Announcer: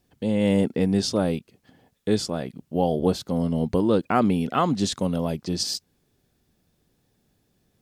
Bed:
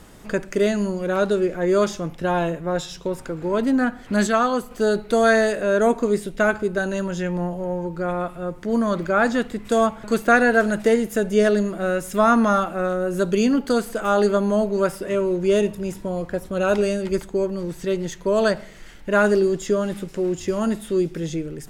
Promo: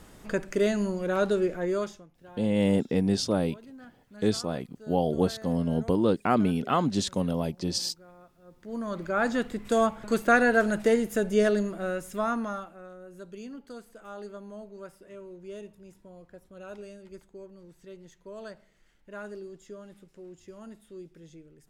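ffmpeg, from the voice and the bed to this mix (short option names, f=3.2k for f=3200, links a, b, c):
-filter_complex "[0:a]adelay=2150,volume=-3dB[a];[1:a]volume=18dB,afade=t=out:st=1.47:d=0.59:silence=0.0707946,afade=t=in:st=8.44:d=1.05:silence=0.0707946,afade=t=out:st=11.35:d=1.45:silence=0.125893[b];[a][b]amix=inputs=2:normalize=0"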